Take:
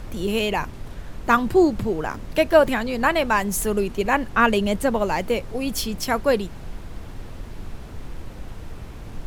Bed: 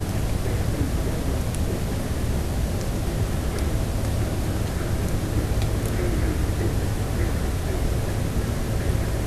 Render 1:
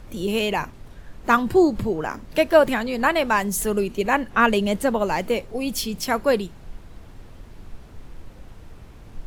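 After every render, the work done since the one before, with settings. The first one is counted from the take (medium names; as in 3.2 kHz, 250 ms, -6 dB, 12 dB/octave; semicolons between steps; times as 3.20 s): noise print and reduce 7 dB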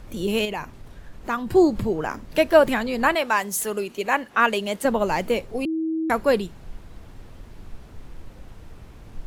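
0.45–1.51 s: compression 1.5:1, threshold -36 dBFS; 3.15–4.85 s: high-pass 520 Hz 6 dB/octave; 5.65–6.10 s: bleep 321 Hz -22 dBFS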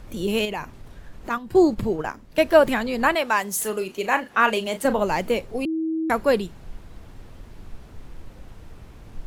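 1.29–2.46 s: gate -28 dBFS, range -8 dB; 3.58–5.01 s: doubling 37 ms -10.5 dB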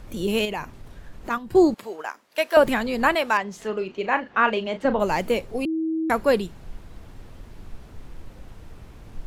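1.74–2.57 s: Bessel high-pass 800 Hz; 3.37–5.00 s: distance through air 190 m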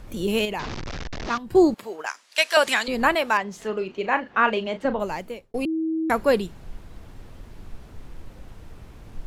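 0.59–1.38 s: one-bit delta coder 32 kbps, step -25.5 dBFS; 2.06–2.88 s: frequency weighting ITU-R 468; 4.67–5.54 s: fade out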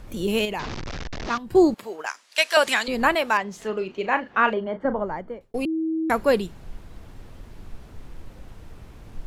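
4.53–5.41 s: Savitzky-Golay filter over 41 samples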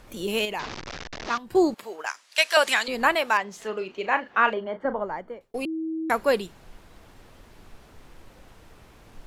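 bass shelf 270 Hz -11 dB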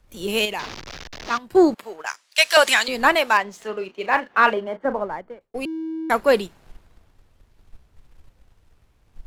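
waveshaping leveller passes 1; three bands expanded up and down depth 40%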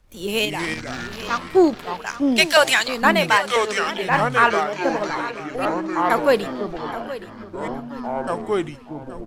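ever faster or slower copies 132 ms, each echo -5 st, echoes 3, each echo -6 dB; feedback delay 823 ms, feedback 31%, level -14.5 dB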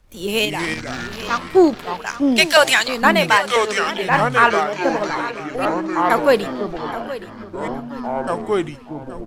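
trim +2.5 dB; peak limiter -1 dBFS, peak gain reduction 1 dB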